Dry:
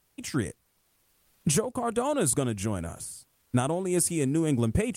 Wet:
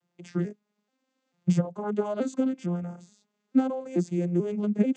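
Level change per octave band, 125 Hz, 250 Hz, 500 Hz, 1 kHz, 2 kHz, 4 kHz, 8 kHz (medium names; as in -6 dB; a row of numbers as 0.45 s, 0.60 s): -1.5 dB, +2.5 dB, -1.0 dB, -5.0 dB, -8.0 dB, under -10 dB, -21.0 dB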